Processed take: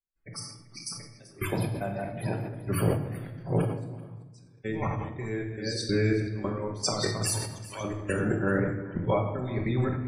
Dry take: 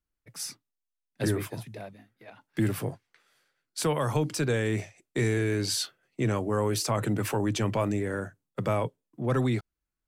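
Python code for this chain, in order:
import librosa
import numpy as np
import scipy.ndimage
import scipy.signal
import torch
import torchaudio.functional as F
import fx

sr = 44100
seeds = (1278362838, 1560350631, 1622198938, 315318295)

y = fx.reverse_delay(x, sr, ms=641, wet_db=-3)
y = fx.differentiator(y, sr, at=(7.27, 7.81))
y = fx.over_compress(y, sr, threshold_db=-31.0, ratio=-0.5)
y = fx.gate_flip(y, sr, shuts_db=-29.0, range_db=-33, at=(3.87, 4.64), fade=0.02)
y = fx.step_gate(y, sr, bpm=191, pattern='..xxx..xxx.xxx..', floor_db=-24.0, edge_ms=4.5)
y = fx.spec_topn(y, sr, count=64)
y = y + 10.0 ** (-18.5 / 20.0) * np.pad(y, (int(386 * sr / 1000.0), 0))[:len(y)]
y = fx.room_shoebox(y, sr, seeds[0], volume_m3=510.0, walls='mixed', distance_m=1.1)
y = fx.sustainer(y, sr, db_per_s=68.0)
y = y * 10.0 ** (3.0 / 20.0)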